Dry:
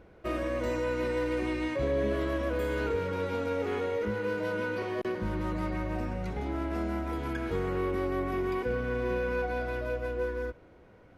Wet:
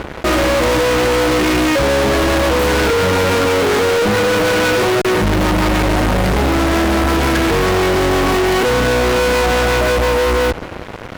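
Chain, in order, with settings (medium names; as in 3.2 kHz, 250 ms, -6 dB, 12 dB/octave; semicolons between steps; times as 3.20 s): fuzz box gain 50 dB, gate -54 dBFS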